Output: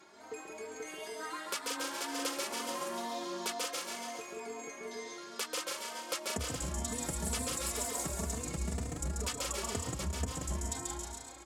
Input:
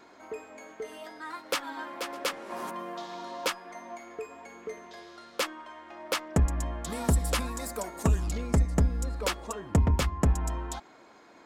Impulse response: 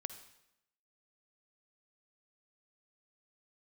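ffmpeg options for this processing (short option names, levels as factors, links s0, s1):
-filter_complex "[0:a]highpass=68,asplit=2[s0][s1];[s1]aecho=0:1:137|274|411|548|685|822:0.631|0.303|0.145|0.0698|0.0335|0.0161[s2];[s0][s2]amix=inputs=2:normalize=0,asettb=1/sr,asplit=3[s3][s4][s5];[s3]atrim=end=8.404[s6];[s4]atrim=start=8.4:end=9.28,asetpts=PTS-STARTPTS,afade=t=in:d=0.004:c=qsin,afade=t=out:st=0.876:d=0.004:c=qsin,volume=15,asoftclip=hard,volume=0.0668[s7];[s5]atrim=start=9.276[s8];[s6][s7]acrossfade=d=0.004:c1=hsin:c2=qsin[s9];[s9][s8]acrossfade=d=0.004:c1=qsin:c2=hsin,acompressor=threshold=0.0251:ratio=6,equalizer=f=8000:w=0.6:g=10.5,asplit=2[s10][s11];[s11]aecho=0:1:180|288|352.8|391.7|415:0.631|0.398|0.251|0.158|0.1[s12];[s10][s12]amix=inputs=2:normalize=0,asplit=2[s13][s14];[s14]adelay=3.2,afreqshift=2.1[s15];[s13][s15]amix=inputs=2:normalize=1,volume=0.794"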